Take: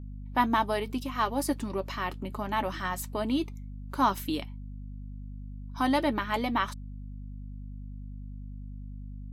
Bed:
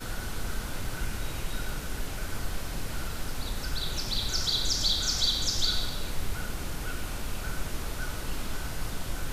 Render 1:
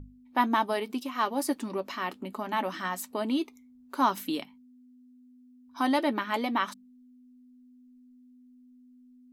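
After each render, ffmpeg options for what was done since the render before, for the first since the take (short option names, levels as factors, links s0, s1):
-af "bandreject=f=50:t=h:w=6,bandreject=f=100:t=h:w=6,bandreject=f=150:t=h:w=6,bandreject=f=200:t=h:w=6"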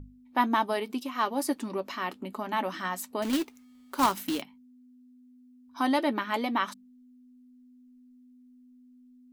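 -filter_complex "[0:a]asettb=1/sr,asplit=3[s0][s1][s2];[s0]atrim=end=3.224[s3];[s1]atrim=start=3.22:end=4.42,asetpts=PTS-STARTPTS,afade=t=in:d=0.004:c=qsin,afade=t=out:st=1.196:d=0.004:c=qsin,acrusher=bits=2:mode=log:mix=0:aa=0.000001[s4];[s2]atrim=start=4.416[s5];[s3][s4]acrossfade=d=0.004:c1=hsin:c2=qsin[s6];[s6][s5]acrossfade=d=0.004:c1=qsin:c2=hsin"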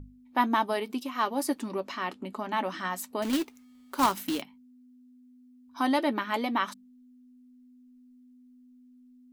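-filter_complex "[0:a]asettb=1/sr,asplit=3[s0][s1][s2];[s0]atrim=end=1.854[s3];[s1]atrim=start=1.85:end=2.9,asetpts=PTS-STARTPTS,afade=t=in:d=0.004:c=qsin,afade=t=out:st=1.046:d=0.004:c=qsin,lowpass=10000[s4];[s2]atrim=start=2.896[s5];[s3][s4]acrossfade=d=0.004:c1=hsin:c2=qsin[s6];[s6][s5]acrossfade=d=0.004:c1=qsin:c2=hsin"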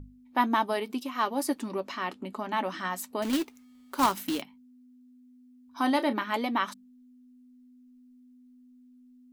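-filter_complex "[0:a]asettb=1/sr,asplit=3[s0][s1][s2];[s0]atrim=end=5.794[s3];[s1]atrim=start=5.79:end=6.24,asetpts=PTS-STARTPTS,afade=t=in:d=0.004:c=qsin,afade=t=out:st=0.446:d=0.004:c=qsin,asplit=2[s4][s5];[s5]adelay=32,volume=0.224[s6];[s4][s6]amix=inputs=2:normalize=0,atrim=end_sample=19845[s7];[s2]atrim=start=6.236[s8];[s3][s7]acrossfade=d=0.004:c1=hsin:c2=qsin[s9];[s9][s8]acrossfade=d=0.004:c1=qsin:c2=hsin"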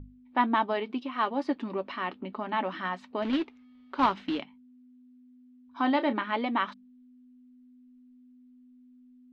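-af "lowpass=f=3600:w=0.5412,lowpass=f=3600:w=1.3066"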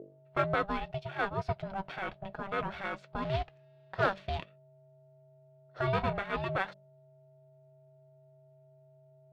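-af "aeval=exprs='if(lt(val(0),0),0.708*val(0),val(0))':c=same,aeval=exprs='val(0)*sin(2*PI*390*n/s)':c=same"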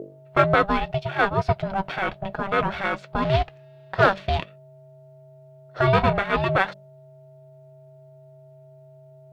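-af "volume=3.76,alimiter=limit=0.708:level=0:latency=1"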